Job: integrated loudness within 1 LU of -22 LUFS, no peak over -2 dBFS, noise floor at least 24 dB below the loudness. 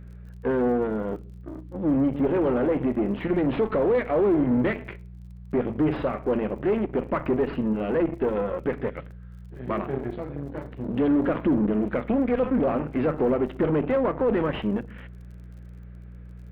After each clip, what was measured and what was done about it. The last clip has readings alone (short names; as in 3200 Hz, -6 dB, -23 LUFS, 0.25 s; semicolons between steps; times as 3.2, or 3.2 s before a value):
ticks 40/s; hum 60 Hz; harmonics up to 180 Hz; hum level -39 dBFS; loudness -25.0 LUFS; peak -14.0 dBFS; loudness target -22.0 LUFS
-> de-click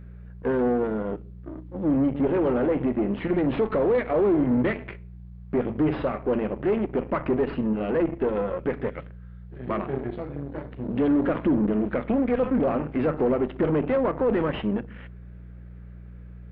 ticks 0/s; hum 60 Hz; harmonics up to 180 Hz; hum level -40 dBFS
-> de-hum 60 Hz, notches 3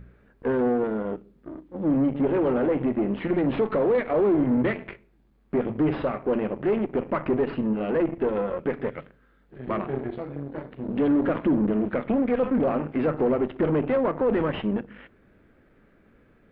hum none; loudness -25.5 LUFS; peak -14.0 dBFS; loudness target -22.0 LUFS
-> gain +3.5 dB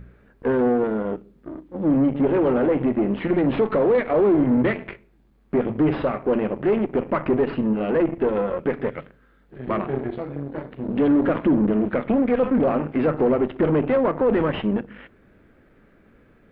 loudness -22.0 LUFS; peak -10.5 dBFS; noise floor -57 dBFS